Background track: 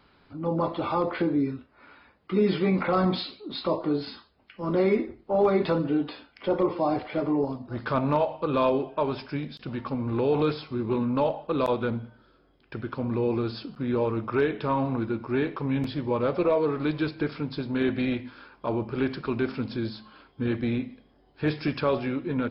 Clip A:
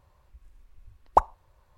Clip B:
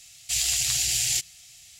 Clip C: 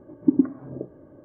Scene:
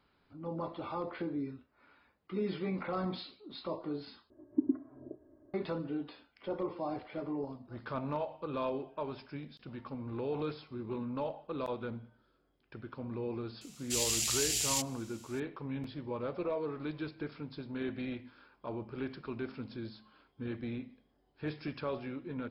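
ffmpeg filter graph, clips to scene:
ffmpeg -i bed.wav -i cue0.wav -i cue1.wav -i cue2.wav -filter_complex "[0:a]volume=-12dB[link_01];[3:a]aecho=1:1:3:0.79[link_02];[link_01]asplit=2[link_03][link_04];[link_03]atrim=end=4.304[link_05];[link_02]atrim=end=1.24,asetpts=PTS-STARTPTS,volume=-15.5dB[link_06];[link_04]atrim=start=5.536[link_07];[2:a]atrim=end=1.79,asetpts=PTS-STARTPTS,volume=-7.5dB,afade=type=in:duration=0.004:curve=hsin,afade=type=out:start_time=1.786:duration=0.004:curve=hsin,adelay=13610[link_08];[link_05][link_06]acrossfade=duration=0.004:curve1=hsin:curve2=hsin[link_09];[link_09][link_07]acrossfade=duration=0.004:curve1=hsin:curve2=hsin[link_10];[link_10][link_08]amix=inputs=2:normalize=0" out.wav

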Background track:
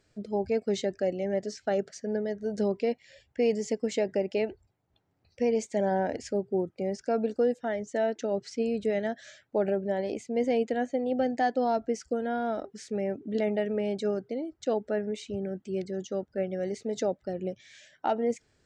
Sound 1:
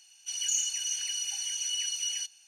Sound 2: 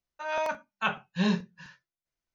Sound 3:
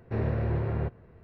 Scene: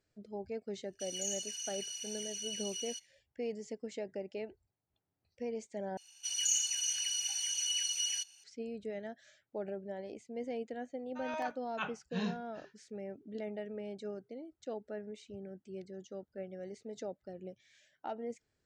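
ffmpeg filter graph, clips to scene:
ffmpeg -i bed.wav -i cue0.wav -i cue1.wav -filter_complex "[1:a]asplit=2[link_01][link_02];[0:a]volume=-13dB[link_03];[link_01]agate=range=-33dB:threshold=-50dB:ratio=3:release=100:detection=peak[link_04];[link_03]asplit=2[link_05][link_06];[link_05]atrim=end=5.974[link_07];[link_02]atrim=end=2.47,asetpts=PTS-STARTPTS,volume=-2dB[link_08];[link_06]atrim=start=8.436[link_09];[link_04]atrim=end=2.47,asetpts=PTS-STARTPTS,volume=-9.5dB,afade=type=in:duration=0.004:curve=hsin,afade=type=out:start_time=2.466:duration=0.004:curve=hsin,adelay=730[link_10];[2:a]atrim=end=2.34,asetpts=PTS-STARTPTS,volume=-10.5dB,afade=type=in:duration=0.004:curve=hsin,afade=type=out:start_time=2.336:duration=0.004:curve=hsin,adelay=10960[link_11];[link_07][link_08]acrossfade=duration=0.004:curve1=hsin:curve2=hsin[link_12];[link_12][link_09]acrossfade=duration=0.004:curve1=hsin:curve2=hsin[link_13];[link_13][link_10][link_11]amix=inputs=3:normalize=0" out.wav

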